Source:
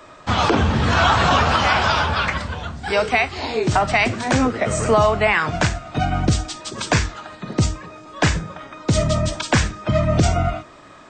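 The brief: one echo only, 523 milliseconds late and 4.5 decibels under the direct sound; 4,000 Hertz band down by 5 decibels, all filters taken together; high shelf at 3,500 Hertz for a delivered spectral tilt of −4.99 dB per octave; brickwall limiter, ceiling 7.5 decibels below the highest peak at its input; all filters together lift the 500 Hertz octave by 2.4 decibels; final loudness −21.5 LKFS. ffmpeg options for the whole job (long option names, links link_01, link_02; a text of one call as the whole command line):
ffmpeg -i in.wav -af "equalizer=frequency=500:width_type=o:gain=3.5,highshelf=frequency=3500:gain=-5,equalizer=frequency=4000:width_type=o:gain=-3.5,alimiter=limit=-11.5dB:level=0:latency=1,aecho=1:1:523:0.596,volume=-0.5dB" out.wav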